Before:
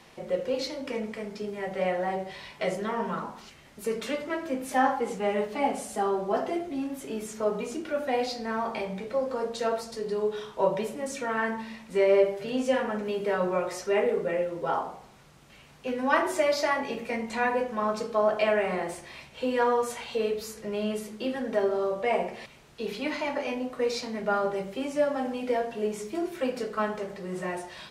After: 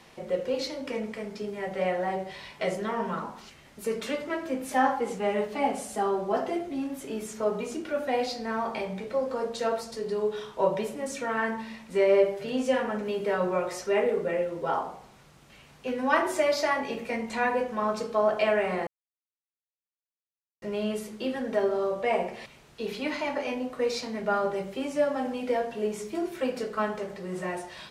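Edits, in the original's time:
0:18.87–0:20.62: silence

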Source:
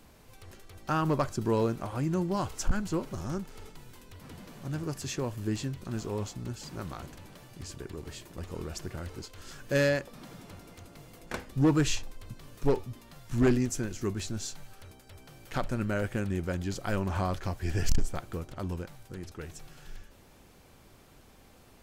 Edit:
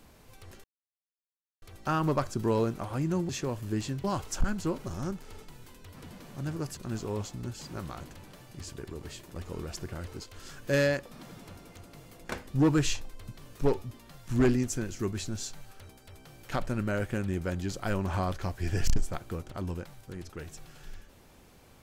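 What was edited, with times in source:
0:00.64: splice in silence 0.98 s
0:05.04–0:05.79: move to 0:02.31

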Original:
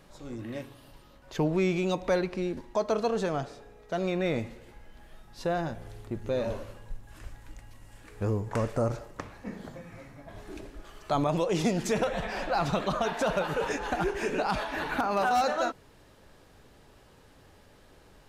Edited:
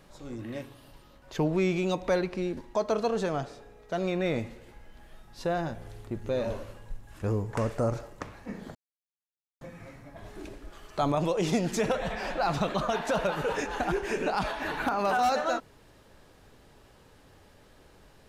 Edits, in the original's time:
0:07.22–0:08.20: remove
0:09.73: splice in silence 0.86 s

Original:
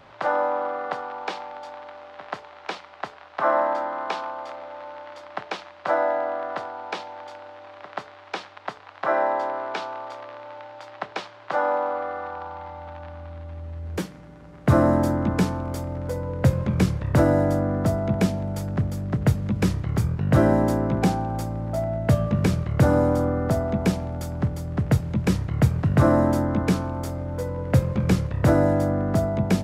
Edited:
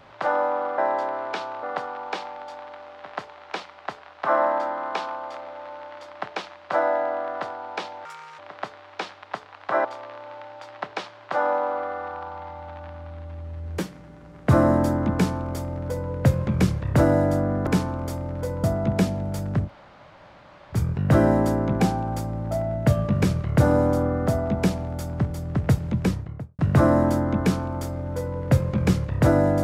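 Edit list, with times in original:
0:07.20–0:07.73: play speed 157%
0:09.19–0:10.04: move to 0:00.78
0:15.33–0:16.30: duplicate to 0:17.86
0:18.89–0:19.97: fill with room tone, crossfade 0.06 s
0:25.14–0:25.81: fade out and dull

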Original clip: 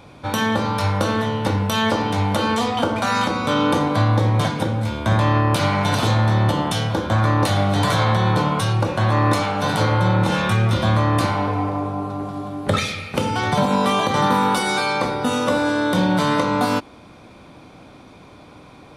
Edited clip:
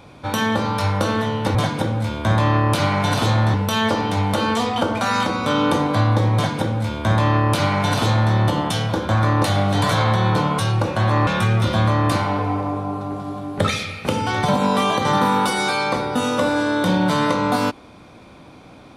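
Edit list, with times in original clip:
0:04.36–0:06.35: duplicate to 0:01.55
0:09.28–0:10.36: remove

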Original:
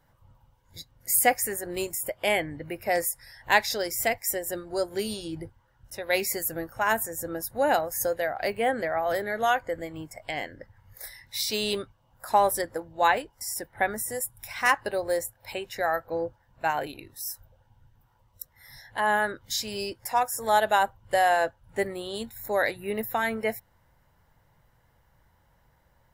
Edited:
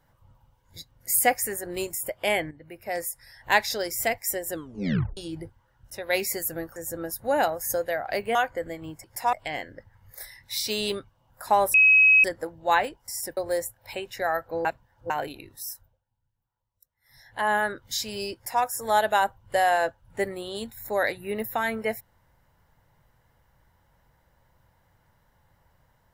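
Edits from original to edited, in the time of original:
0:02.51–0:03.52: fade in, from −13 dB
0:04.52: tape stop 0.65 s
0:06.76–0:07.07: remove
0:08.66–0:09.47: remove
0:12.57: insert tone 2,550 Hz −13 dBFS 0.50 s
0:13.70–0:14.96: remove
0:16.24–0:16.69: reverse
0:17.20–0:19.00: duck −20.5 dB, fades 0.40 s
0:19.93–0:20.22: duplicate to 0:10.16

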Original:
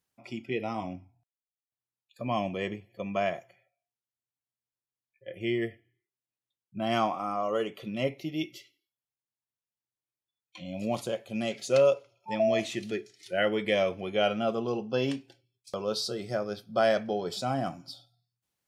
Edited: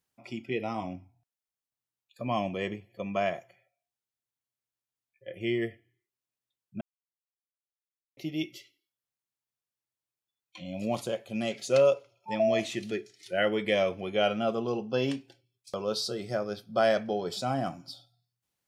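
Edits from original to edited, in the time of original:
0:06.81–0:08.17: silence

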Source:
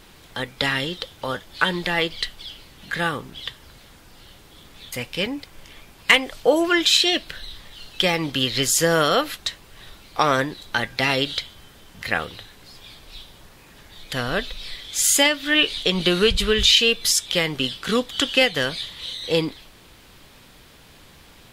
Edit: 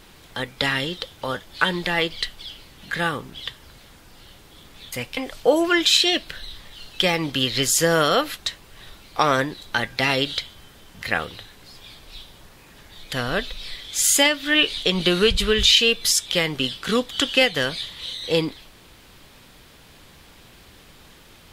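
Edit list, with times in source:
0:05.17–0:06.17: remove

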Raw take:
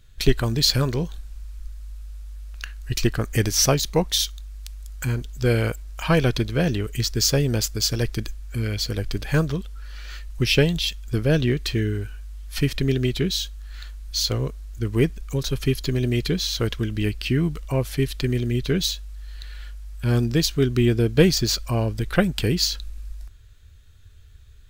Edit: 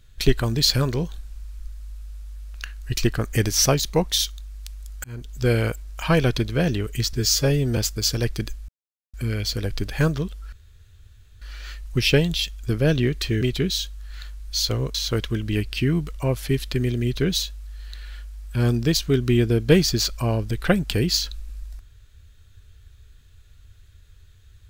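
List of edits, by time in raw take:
0:05.04–0:05.35: fade in linear
0:07.13–0:07.56: time-stretch 1.5×
0:08.47: splice in silence 0.45 s
0:09.86: splice in room tone 0.89 s
0:11.86–0:13.02: remove
0:14.55–0:16.43: remove

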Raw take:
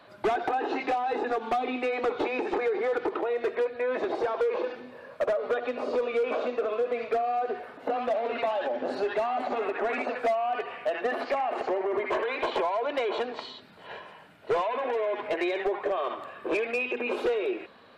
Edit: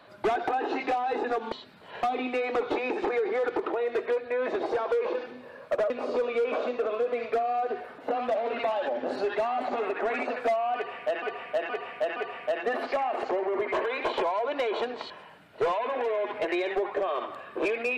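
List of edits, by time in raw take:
0:05.39–0:05.69: remove
0:10.54–0:11.01: repeat, 4 plays
0:13.48–0:13.99: move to 0:01.52

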